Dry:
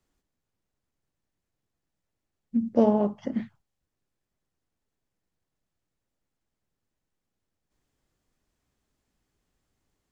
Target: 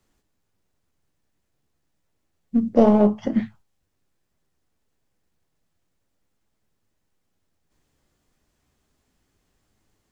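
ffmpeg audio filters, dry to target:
-filter_complex "[0:a]asplit=2[a][b];[b]aeval=exprs='clip(val(0),-1,0.0562)':c=same,volume=-5.5dB[c];[a][c]amix=inputs=2:normalize=0,flanger=delay=9.2:depth=4.7:regen=68:speed=0.3:shape=sinusoidal,volume=8dB"

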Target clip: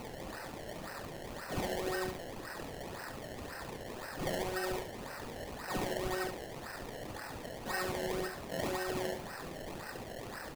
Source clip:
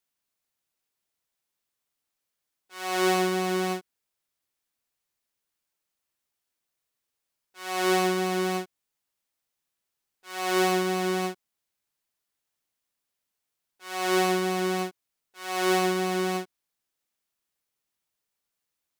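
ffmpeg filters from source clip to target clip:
-filter_complex "[0:a]aeval=exprs='val(0)+0.5*0.0376*sgn(val(0))':c=same,equalizer=f=125:t=o:w=1:g=-11,equalizer=f=250:t=o:w=1:g=7,equalizer=f=500:t=o:w=1:g=-5,equalizer=f=1k:t=o:w=1:g=6,equalizer=f=2k:t=o:w=1:g=5,equalizer=f=4k:t=o:w=1:g=-5,equalizer=f=8k:t=o:w=1:g=7,acompressor=threshold=-24dB:ratio=12,asplit=3[a][b][c];[a]bandpass=f=530:t=q:w=8,volume=0dB[d];[b]bandpass=f=1.84k:t=q:w=8,volume=-6dB[e];[c]bandpass=f=2.48k:t=q:w=8,volume=-9dB[f];[d][e][f]amix=inputs=3:normalize=0,lowshelf=f=390:g=-9.5,atempo=1.8,acrusher=samples=25:mix=1:aa=0.000001:lfo=1:lforange=25:lforate=1.9,asplit=2[g][h];[h]aecho=0:1:32.07|69.97:0.251|0.398[i];[g][i]amix=inputs=2:normalize=0,volume=8.5dB"

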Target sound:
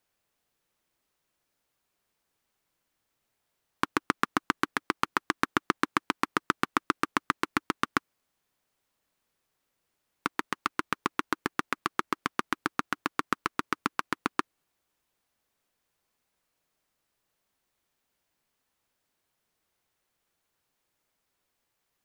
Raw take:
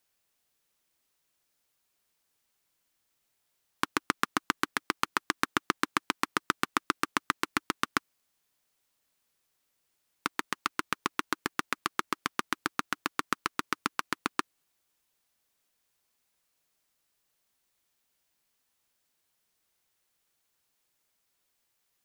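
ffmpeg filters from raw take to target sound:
-af "highshelf=f=2.5k:g=-8.5,volume=3.5dB"

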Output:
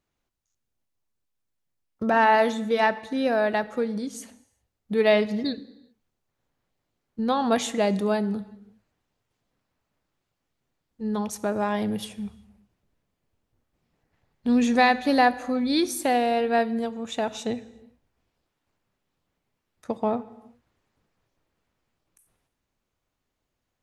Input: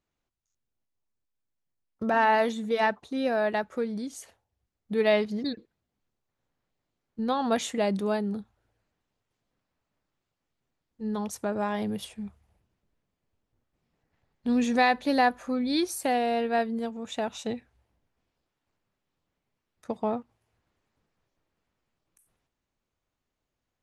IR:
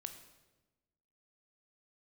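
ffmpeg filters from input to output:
-filter_complex "[0:a]asplit=2[a][b];[1:a]atrim=start_sample=2205,afade=t=out:st=0.35:d=0.01,atrim=end_sample=15876,asetrate=33516,aresample=44100[c];[b][c]afir=irnorm=-1:irlink=0,volume=-3.5dB[d];[a][d]amix=inputs=2:normalize=0"

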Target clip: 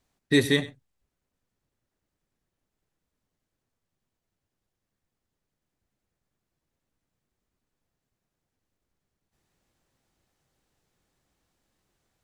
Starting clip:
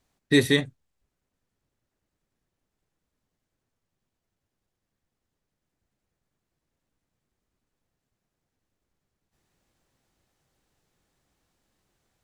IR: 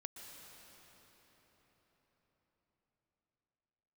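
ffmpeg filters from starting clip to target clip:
-filter_complex "[0:a]asplit=2[a][b];[1:a]atrim=start_sample=2205,atrim=end_sample=3528,adelay=96[c];[b][c]afir=irnorm=-1:irlink=0,volume=-11.5dB[d];[a][d]amix=inputs=2:normalize=0,volume=-1.5dB"

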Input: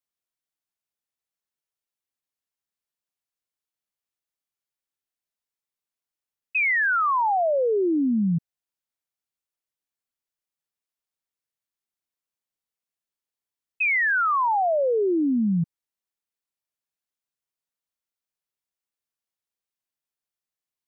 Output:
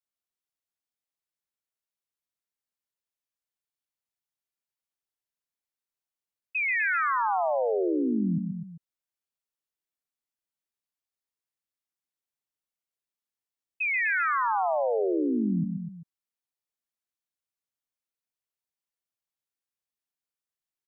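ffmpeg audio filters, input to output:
-af "aecho=1:1:133|250|392:0.473|0.376|0.158,volume=-5.5dB"

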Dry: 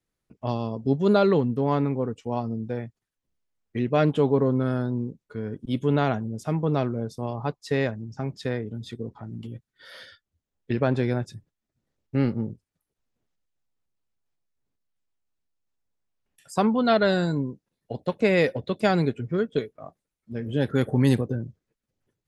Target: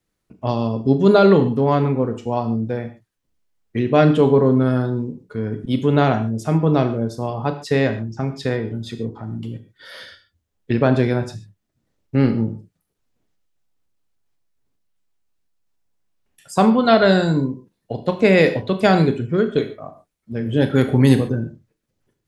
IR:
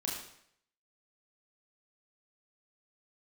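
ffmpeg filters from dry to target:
-filter_complex "[0:a]asplit=2[a][b];[1:a]atrim=start_sample=2205,atrim=end_sample=6615[c];[b][c]afir=irnorm=-1:irlink=0,volume=-6dB[d];[a][d]amix=inputs=2:normalize=0,volume=3.5dB"

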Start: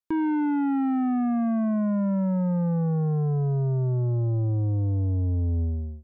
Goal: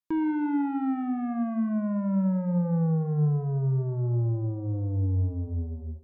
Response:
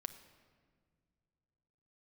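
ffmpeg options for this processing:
-filter_complex "[0:a]bandreject=f=660:w=17[a];[1:a]atrim=start_sample=2205,afade=t=out:st=0.35:d=0.01,atrim=end_sample=15876[b];[a][b]afir=irnorm=-1:irlink=0"

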